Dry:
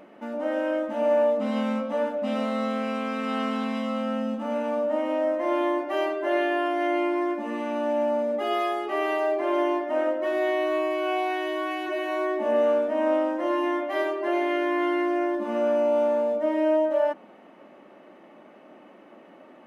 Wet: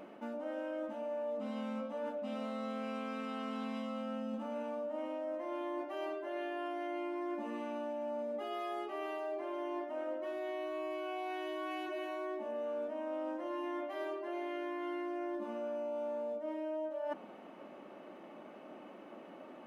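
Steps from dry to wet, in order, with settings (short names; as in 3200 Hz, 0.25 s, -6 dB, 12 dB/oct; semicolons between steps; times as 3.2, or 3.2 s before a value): bell 1900 Hz -5 dB 0.25 oct; reverse; compressor 12:1, threshold -35 dBFS, peak gain reduction 16.5 dB; reverse; gain -1.5 dB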